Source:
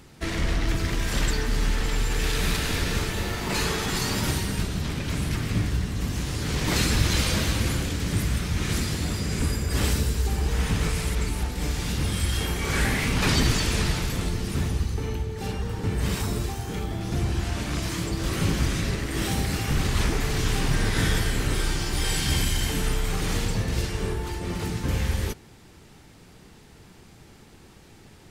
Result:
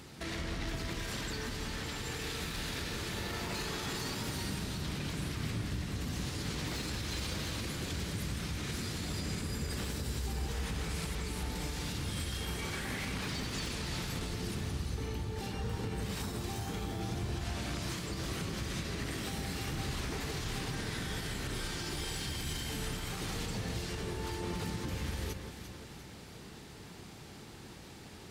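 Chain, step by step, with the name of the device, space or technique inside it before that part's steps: broadcast voice chain (high-pass 75 Hz 6 dB/octave; de-esser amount 55%; compression 3:1, threshold -36 dBFS, peak gain reduction 13.5 dB; peaking EQ 4.1 kHz +3 dB 0.77 oct; peak limiter -29 dBFS, peak gain reduction 6 dB); echo whose repeats swap between lows and highs 174 ms, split 1.6 kHz, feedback 70%, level -6 dB

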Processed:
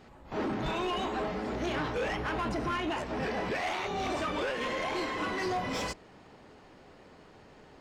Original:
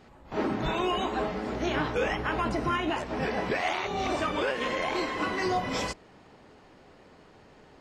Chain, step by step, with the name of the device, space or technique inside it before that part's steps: saturation between pre-emphasis and de-emphasis (treble shelf 4 kHz +7.5 dB; saturation -27 dBFS, distortion -12 dB; treble shelf 4 kHz -7.5 dB)

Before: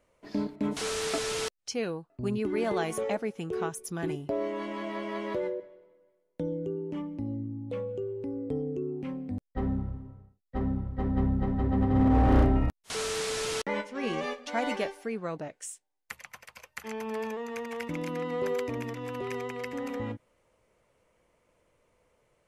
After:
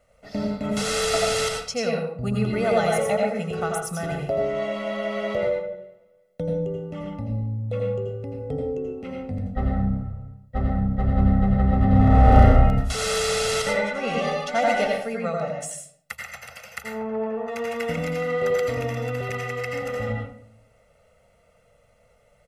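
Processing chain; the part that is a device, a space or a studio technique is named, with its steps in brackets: 16.84–17.48 s: low-pass 1.1 kHz 12 dB/octave; microphone above a desk (comb 1.5 ms, depth 90%; reverberation RT60 0.60 s, pre-delay 78 ms, DRR 0 dB); trim +3 dB

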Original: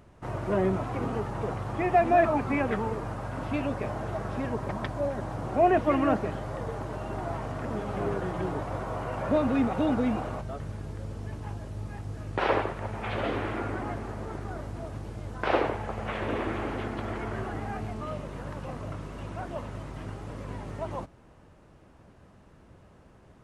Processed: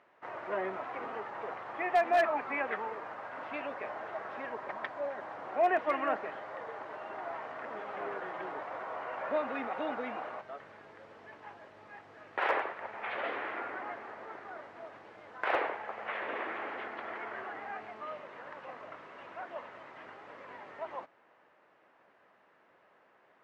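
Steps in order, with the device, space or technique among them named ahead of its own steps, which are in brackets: megaphone (band-pass 590–2900 Hz; peaking EQ 1.9 kHz +5 dB 0.6 oct; hard clipper -17 dBFS, distortion -24 dB); trim -3 dB

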